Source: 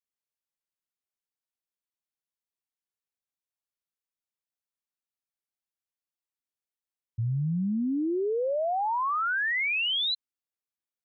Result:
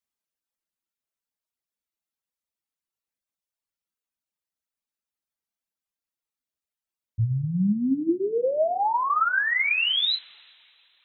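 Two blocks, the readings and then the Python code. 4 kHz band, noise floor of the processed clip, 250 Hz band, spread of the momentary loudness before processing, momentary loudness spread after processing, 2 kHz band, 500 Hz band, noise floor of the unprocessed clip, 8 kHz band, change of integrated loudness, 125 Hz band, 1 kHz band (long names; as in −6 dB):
+4.0 dB, below −85 dBFS, +4.0 dB, 6 LU, 7 LU, +4.0 dB, +3.5 dB, below −85 dBFS, can't be measured, +4.0 dB, +3.5 dB, +4.0 dB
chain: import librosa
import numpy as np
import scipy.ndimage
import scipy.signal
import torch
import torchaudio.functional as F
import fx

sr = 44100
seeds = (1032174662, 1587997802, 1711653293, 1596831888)

y = fx.rev_double_slope(x, sr, seeds[0], early_s=0.29, late_s=2.9, knee_db=-18, drr_db=2.0)
y = fx.dynamic_eq(y, sr, hz=100.0, q=3.1, threshold_db=-43.0, ratio=4.0, max_db=5)
y = fx.dereverb_blind(y, sr, rt60_s=1.9)
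y = y * 10.0 ** (2.5 / 20.0)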